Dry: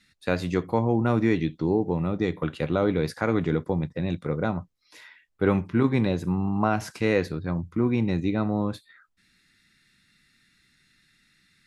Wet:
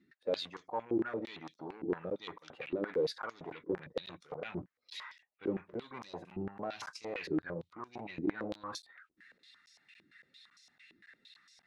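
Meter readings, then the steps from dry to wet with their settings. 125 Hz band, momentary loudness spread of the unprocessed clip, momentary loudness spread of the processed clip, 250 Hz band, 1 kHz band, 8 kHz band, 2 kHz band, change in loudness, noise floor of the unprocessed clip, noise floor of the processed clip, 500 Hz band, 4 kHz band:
−23.0 dB, 6 LU, 23 LU, −15.0 dB, −12.5 dB, can't be measured, −11.5 dB, −14.0 dB, −65 dBFS, −80 dBFS, −11.0 dB, −4.5 dB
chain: spectral magnitudes quantised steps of 15 dB
reversed playback
downward compressor 5 to 1, threshold −32 dBFS, peak gain reduction 14 dB
reversed playback
soft clipping −30.5 dBFS, distortion −13 dB
regular buffer underruns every 0.28 s, samples 512, zero, from 0:00.70
band-pass on a step sequencer 8.8 Hz 340–5,600 Hz
level +13 dB

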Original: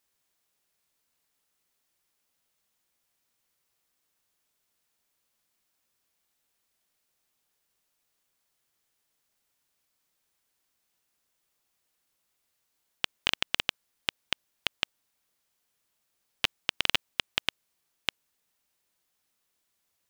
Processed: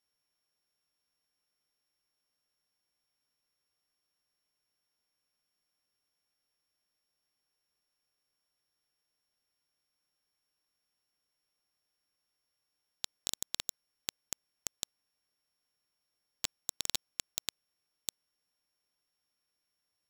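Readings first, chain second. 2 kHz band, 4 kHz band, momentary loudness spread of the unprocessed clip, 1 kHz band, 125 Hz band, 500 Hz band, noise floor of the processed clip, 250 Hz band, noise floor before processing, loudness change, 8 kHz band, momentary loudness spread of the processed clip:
−18.0 dB, −11.0 dB, 8 LU, −14.0 dB, −9.5 dB, −11.5 dB, −84 dBFS, −10.0 dB, −78 dBFS, −8.0 dB, +7.0 dB, 8 LU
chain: samples sorted by size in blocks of 8 samples
highs frequency-modulated by the lows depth 0.5 ms
level −6.5 dB

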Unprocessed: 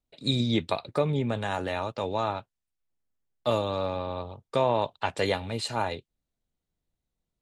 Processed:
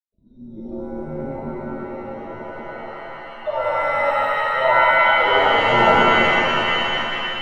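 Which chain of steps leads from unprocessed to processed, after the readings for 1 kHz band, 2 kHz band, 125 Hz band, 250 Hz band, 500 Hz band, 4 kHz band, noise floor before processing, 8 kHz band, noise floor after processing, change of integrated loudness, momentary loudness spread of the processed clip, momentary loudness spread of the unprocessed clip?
+14.0 dB, +20.5 dB, −2.0 dB, +4.0 dB, +8.0 dB, +10.5 dB, below −85 dBFS, can't be measured, −44 dBFS, +12.5 dB, 19 LU, 7 LU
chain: expanding power law on the bin magnitudes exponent 1.8
band-pass filter sweep 4,200 Hz → 210 Hz, 0:05.05–0:05.89
tube saturation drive 46 dB, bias 0.4
on a send: echo with a time of its own for lows and highs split 1,900 Hz, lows 190 ms, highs 251 ms, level −7 dB
on the sum: automatic gain control gain up to 15.5 dB
low-pass filter sweep 240 Hz → 860 Hz, 0:02.15–0:02.91
reverb with rising layers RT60 3.2 s, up +7 semitones, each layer −2 dB, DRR −8.5 dB
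level +4.5 dB

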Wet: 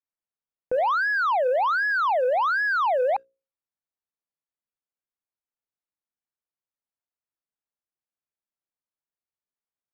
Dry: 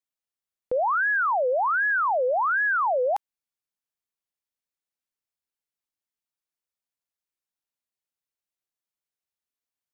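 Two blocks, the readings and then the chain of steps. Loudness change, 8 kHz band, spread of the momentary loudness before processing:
+0.5 dB, can't be measured, 5 LU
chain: low-pass filter 1,600 Hz 12 dB per octave
mains-hum notches 60/120/180/240/300/360/420/480/540 Hz
leveller curve on the samples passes 1

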